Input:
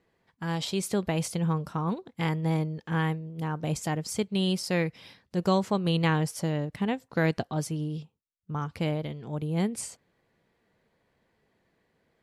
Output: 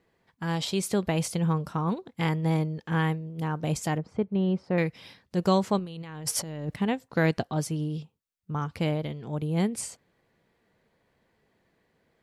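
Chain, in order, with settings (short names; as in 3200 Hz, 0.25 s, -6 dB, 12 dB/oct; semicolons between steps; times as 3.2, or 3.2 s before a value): 3.98–4.78 LPF 1200 Hz 12 dB/oct; 5.79–6.74 negative-ratio compressor -37 dBFS, ratio -1; gain +1.5 dB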